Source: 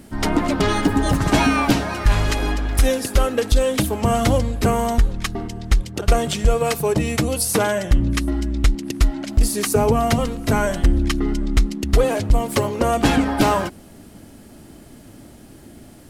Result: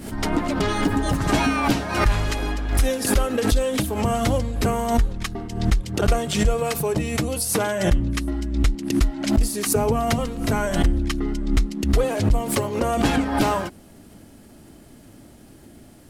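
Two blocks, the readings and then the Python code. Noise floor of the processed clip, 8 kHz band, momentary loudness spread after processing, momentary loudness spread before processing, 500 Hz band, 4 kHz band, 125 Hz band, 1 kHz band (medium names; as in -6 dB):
-47 dBFS, -1.5 dB, 4 LU, 5 LU, -3.0 dB, -2.5 dB, -2.5 dB, -3.0 dB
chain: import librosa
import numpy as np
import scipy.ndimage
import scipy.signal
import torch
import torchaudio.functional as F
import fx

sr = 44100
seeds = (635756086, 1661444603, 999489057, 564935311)

y = fx.pre_swell(x, sr, db_per_s=78.0)
y = F.gain(torch.from_numpy(y), -4.0).numpy()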